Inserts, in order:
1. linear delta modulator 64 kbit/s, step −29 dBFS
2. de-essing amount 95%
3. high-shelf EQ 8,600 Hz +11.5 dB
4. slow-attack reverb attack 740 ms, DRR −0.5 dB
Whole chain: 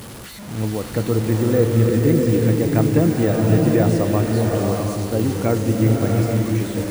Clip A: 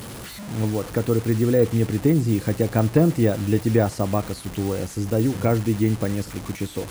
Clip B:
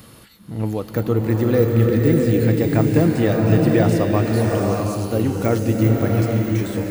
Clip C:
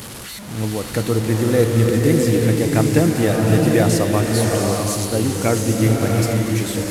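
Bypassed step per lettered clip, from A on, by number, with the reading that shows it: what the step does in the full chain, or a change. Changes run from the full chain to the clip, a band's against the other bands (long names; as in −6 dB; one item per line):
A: 4, change in momentary loudness spread +3 LU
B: 1, 8 kHz band −4.5 dB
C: 2, 8 kHz band +7.0 dB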